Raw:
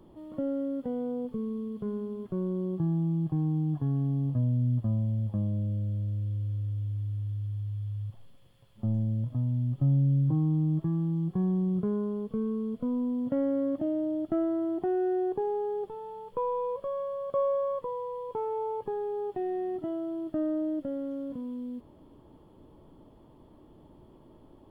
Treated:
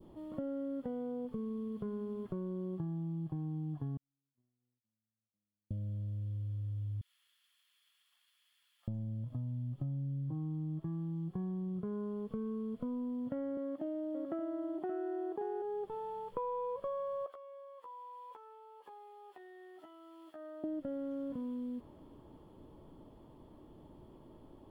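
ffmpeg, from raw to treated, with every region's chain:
-filter_complex "[0:a]asettb=1/sr,asplit=3[a][b][c];[a]atrim=end=3.974[d];[b]atrim=start=3.97:end=5.71,asetpts=PTS-STARTPTS,afade=t=in:d=0.004:c=qsin,afade=t=out:st=1.736:d=0.004:c=qsin,highpass=210,agate=range=-56dB:threshold=-28dB:ratio=16:release=100:detection=peak,equalizer=f=610:w=4.1:g=-9.5[e];[c]atrim=start=5.706[f];[d][e]acrossfade=d=0.004:c1=hsin:c2=qsin[g];[g][f]acrossfade=d=0.004:c1=qsin:c2=hsin,asettb=1/sr,asplit=3[h][i][j];[h]atrim=end=7.014[k];[i]atrim=start=7.01:end=8.88,asetpts=PTS-STARTPTS,afade=t=in:d=0.004:c=qsin,afade=t=out:st=1.866:d=0.004:c=qsin,highpass=f=1.5k:w=0.5412,highpass=f=1.5k:w=1.3066,acrusher=bits=3:mode=log:mix=0:aa=0.000001[l];[j]atrim=start=8.876[m];[k][l]acrossfade=d=0.004:c1=hsin:c2=qsin[n];[n][m]acrossfade=d=0.004:c1=qsin:c2=hsin,asettb=1/sr,asplit=3[o][p][q];[o]atrim=end=13.574[r];[p]atrim=start=13.57:end=15.62,asetpts=PTS-STARTPTS,afade=t=in:d=0.004:c=qsin,afade=t=out:st=2.046:d=0.004:c=qsin,highpass=240,aecho=1:1:575:0.473,atrim=end_sample=90405[s];[q]atrim=start=15.616[t];[r][s]acrossfade=d=0.004:c1=hsin:c2=qsin[u];[u][t]acrossfade=d=0.004:c1=qsin:c2=hsin,asettb=1/sr,asplit=3[v][w][x];[v]atrim=end=17.264[y];[w]atrim=start=17.26:end=20.64,asetpts=PTS-STARTPTS,afade=t=in:d=0.004:c=qsin,afade=t=out:st=3.376:d=0.004:c=qsin,highpass=1k,acompressor=threshold=-48dB:ratio=12:attack=3.2:release=140:knee=1:detection=peak,asplit=2[z][aa];[aa]adelay=13,volume=-3dB[ab];[z][ab]amix=inputs=2:normalize=0,atrim=end_sample=149058[ac];[x]atrim=start=20.636[ad];[y][ac]acrossfade=d=0.004:c1=hsin:c2=qsin[ae];[ae][ad]acrossfade=d=0.004:c1=qsin:c2=hsin,acompressor=threshold=-35dB:ratio=6,adynamicequalizer=threshold=0.00251:dfrequency=1500:dqfactor=0.89:tfrequency=1500:tqfactor=0.89:attack=5:release=100:ratio=0.375:range=2:mode=boostabove:tftype=bell,volume=-1.5dB"

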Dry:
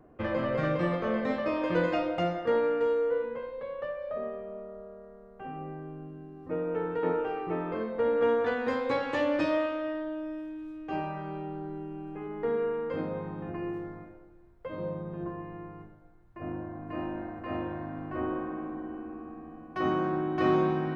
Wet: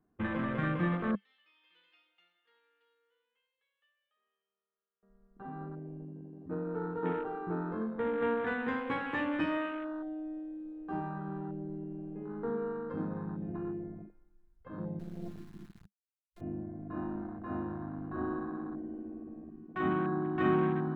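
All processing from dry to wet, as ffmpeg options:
-filter_complex "[0:a]asettb=1/sr,asplit=3[a][b][c];[a]atrim=end=1.154[d];[b]atrim=start=1.15:end=5.03,asetpts=PTS-STARTPTS,afade=t=in:d=0.004:c=qsin,afade=t=out:st=3.876:d=0.004:c=qsin,bandpass=f=3.1k:t=q:w=5.6,aecho=1:1:2.3:0.55,atrim=end_sample=171108[e];[c]atrim=start=5.026[f];[d][e]acrossfade=d=0.004:c1=hsin:c2=qsin[g];[g][f]acrossfade=d=0.004:c1=qsin:c2=hsin,asettb=1/sr,asplit=3[h][i][j];[h]atrim=end=14.994[k];[i]atrim=start=14.99:end=16.41,asetpts=PTS-STARTPTS,afade=t=in:d=0.004:c=qsin,afade=t=out:st=1.416:d=0.004:c=qsin,equalizer=f=640:t=o:w=0.3:g=-6,acrusher=bits=4:dc=4:mix=0:aa=0.000001[l];[j]atrim=start=16.406[m];[k][l]acrossfade=d=0.004:c1=hsin:c2=qsin[n];[n][m]acrossfade=d=0.004:c1=qsin:c2=hsin,equalizer=f=560:w=3.6:g=-12.5,afwtdn=0.0112,equalizer=f=200:t=o:w=0.33:g=9,equalizer=f=1.6k:t=o:w=0.33:g=4,equalizer=f=4k:t=o:w=0.33:g=3,volume=-2.5dB"

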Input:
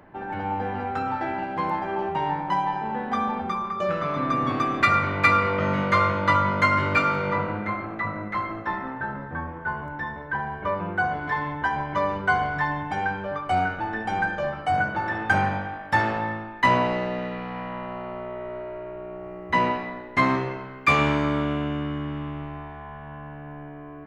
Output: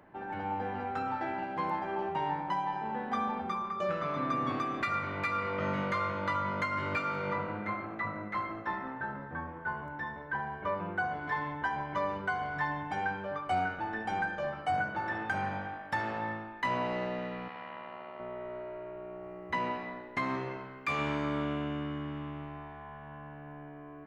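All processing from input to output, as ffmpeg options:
-filter_complex "[0:a]asettb=1/sr,asplit=3[a][b][c];[a]atrim=end=17.484[d];[b]atrim=start=17.48:end=18.2,asetpts=PTS-STARTPTS,afade=t=in:d=0.004:c=qsin,afade=t=out:st=0.716:d=0.004:c=qsin,lowpass=3.8k,aemphasis=mode=production:type=riaa,tremolo=f=76:d=0.621[e];[c]atrim=start=18.196[f];[d][e]acrossfade=d=0.004:c1=hsin:c2=qsin[g];[g][f]acrossfade=d=0.004:c1=qsin:c2=hsin,lowshelf=f=89:g=-7,alimiter=limit=-15dB:level=0:latency=1:release=352,volume=-6.5dB"

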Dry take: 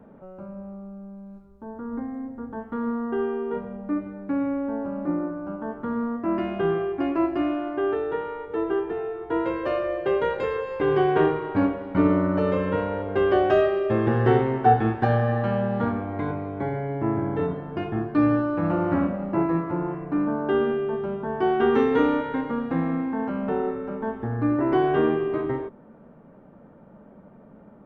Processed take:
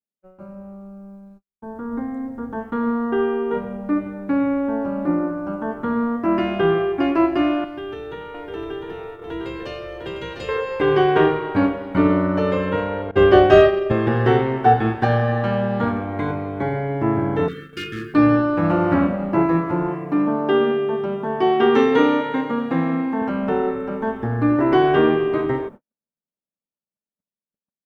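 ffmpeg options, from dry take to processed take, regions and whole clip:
-filter_complex "[0:a]asettb=1/sr,asplit=3[a][b][c];[a]atrim=end=7.644[d];[b]atrim=start=7.64:end=10.49,asetpts=PTS-STARTPTS,afade=t=in:d=0.004:c=qsin,afade=t=out:st=2.846:d=0.004:c=qsin,acrossover=split=200|3000[e][f][g];[f]acompressor=threshold=-40dB:ratio=4:attack=3.2:release=140:knee=2.83:detection=peak[h];[e][h][g]amix=inputs=3:normalize=0,aecho=1:1:703:0.596,atrim=end_sample=125685[i];[c]atrim=start=10.486[j];[d][i]acrossfade=d=0.004:c1=hsin:c2=qsin[k];[k][j]acrossfade=d=0.004:c1=qsin:c2=hsin,asettb=1/sr,asplit=3[l][m][n];[l]atrim=end=13.114[o];[m]atrim=start=13.11:end=13.92,asetpts=PTS-STARTPTS,afade=t=in:d=0.004:c=qsin,afade=t=out:st=0.806:d=0.004:c=qsin,agate=range=-33dB:threshold=-19dB:ratio=3:release=100:detection=peak,lowshelf=f=210:g=9,acontrast=28[p];[n]atrim=start=13.916[q];[o][p]acrossfade=d=0.004:c1=hsin:c2=qsin[r];[r][q]acrossfade=d=0.004:c1=qsin:c2=hsin,asettb=1/sr,asplit=3[s][t][u];[s]atrim=end=17.484[v];[t]atrim=start=17.48:end=18.14,asetpts=PTS-STARTPTS,afade=t=in:d=0.004:c=qsin,afade=t=out:st=0.656:d=0.004:c=qsin,tiltshelf=f=1.4k:g=-8.5,asoftclip=type=hard:threshold=-29.5dB,asuperstop=centerf=770:order=20:qfactor=1.2[w];[u]atrim=start=18.136[x];[v][w]acrossfade=d=0.004:c1=hsin:c2=qsin[y];[y][x]acrossfade=d=0.004:c1=qsin:c2=hsin,asettb=1/sr,asplit=3[z][aa][ab];[z]atrim=end=19.894[ac];[aa]atrim=start=19.89:end=23.22,asetpts=PTS-STARTPTS,afade=t=in:d=0.004:c=qsin,afade=t=out:st=3.326:d=0.004:c=qsin,highpass=120,bandreject=f=1.5k:w=11[ad];[ab]atrim=start=23.216[ae];[ac][ad]acrossfade=d=0.004:c1=hsin:c2=qsin[af];[af][ae]acrossfade=d=0.004:c1=qsin:c2=hsin,agate=range=-55dB:threshold=-41dB:ratio=16:detection=peak,highshelf=f=2.6k:g=9.5,dynaudnorm=f=250:g=13:m=5.5dB"

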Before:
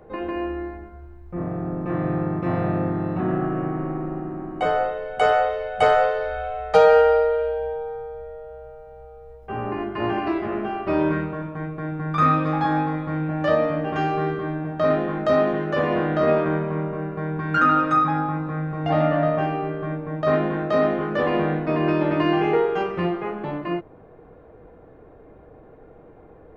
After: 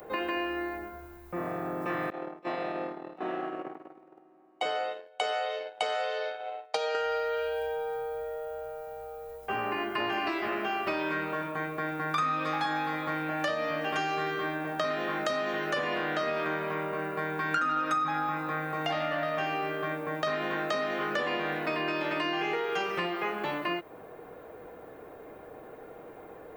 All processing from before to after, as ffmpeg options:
-filter_complex "[0:a]asettb=1/sr,asplit=3[a][b][c];[a]atrim=end=2.104[d];[b]atrim=start=2.1:end=6.95,asetpts=PTS-STARTPTS,afade=t=in:d=0.004:c=qsin,afade=t=out:st=4.846:d=0.004:c=qsin,highpass=410,lowpass=4.5k,equalizer=f=1.5k:w=0.96:g=-9.5,agate=range=-23dB:threshold=-32dB:ratio=16:release=100:detection=peak[e];[c]atrim=start=6.946[f];[d][e]acrossfade=d=0.004:c1=hsin:c2=qsin[g];[g][f]acrossfade=d=0.004:c1=qsin:c2=hsin,acompressor=threshold=-20dB:ratio=6,aemphasis=mode=production:type=riaa,acrossover=split=290|1400[h][i][j];[h]acompressor=threshold=-48dB:ratio=4[k];[i]acompressor=threshold=-38dB:ratio=4[l];[j]acompressor=threshold=-38dB:ratio=4[m];[k][l][m]amix=inputs=3:normalize=0,volume=4.5dB"

